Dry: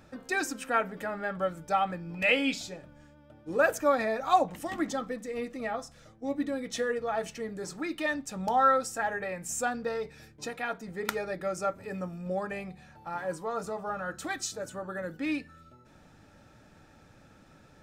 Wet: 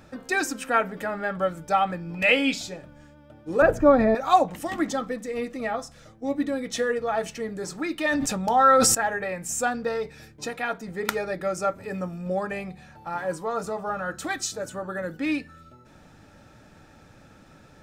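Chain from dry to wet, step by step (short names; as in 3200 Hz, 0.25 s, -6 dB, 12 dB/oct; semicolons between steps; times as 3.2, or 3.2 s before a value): 3.62–4.15 tilt -4.5 dB/oct; 8.02–8.95 sustainer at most 21 dB/s; gain +5 dB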